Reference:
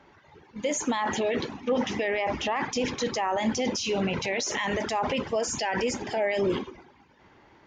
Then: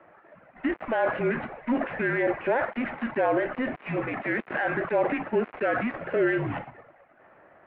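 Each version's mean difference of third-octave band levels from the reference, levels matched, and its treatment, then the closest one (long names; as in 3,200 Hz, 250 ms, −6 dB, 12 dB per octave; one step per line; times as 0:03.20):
8.5 dB: gap after every zero crossing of 0.12 ms
single-sideband voice off tune −250 Hz 540–2,500 Hz
level +5 dB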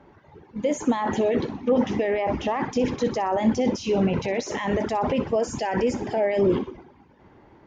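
3.5 dB: tilt shelving filter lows +7 dB, about 1,200 Hz
delay with a high-pass on its return 62 ms, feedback 44%, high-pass 1,900 Hz, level −14.5 dB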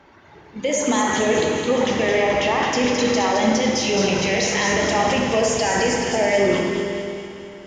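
6.5 dB: echo with a time of its own for lows and highs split 1,900 Hz, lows 85 ms, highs 215 ms, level −5 dB
four-comb reverb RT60 2.8 s, combs from 25 ms, DRR 1.5 dB
level +5 dB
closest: second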